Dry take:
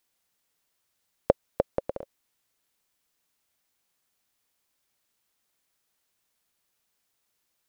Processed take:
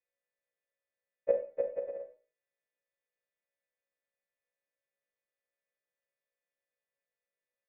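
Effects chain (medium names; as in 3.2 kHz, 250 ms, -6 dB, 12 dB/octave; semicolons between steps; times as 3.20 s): partials quantised in pitch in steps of 2 st; cascade formant filter e; Schroeder reverb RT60 0.41 s, combs from 30 ms, DRR 5.5 dB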